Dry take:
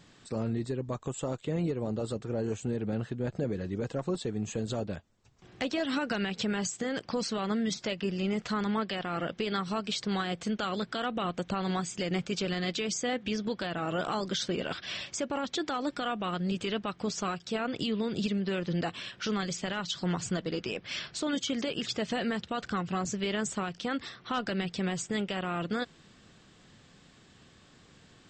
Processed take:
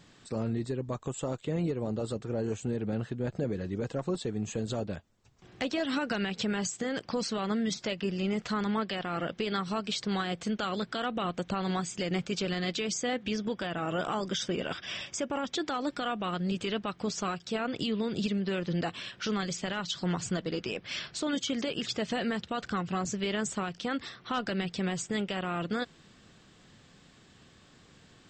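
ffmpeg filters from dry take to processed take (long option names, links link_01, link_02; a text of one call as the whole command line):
ffmpeg -i in.wav -filter_complex "[0:a]asettb=1/sr,asplit=3[link_01][link_02][link_03];[link_01]atrim=end=13.404[link_04];[link_02]atrim=start=13.4:end=15.53,asetpts=PTS-STARTPTS,afade=type=in:duration=0.004:curve=qsin,afade=type=out:start_time=2.126:duration=0.004:curve=qsin,asuperstop=centerf=4200:order=4:qfactor=5.9[link_05];[link_03]atrim=start=15.526[link_06];[link_04][link_05]acrossfade=duration=0.004:curve1=hsin:curve2=qsin[link_07];[link_07][link_06]acrossfade=duration=0.004:curve1=qsin:curve2=hsin" out.wav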